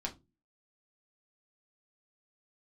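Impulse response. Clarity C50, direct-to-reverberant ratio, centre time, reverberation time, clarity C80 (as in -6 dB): 16.5 dB, -0.5 dB, 10 ms, no single decay rate, 25.5 dB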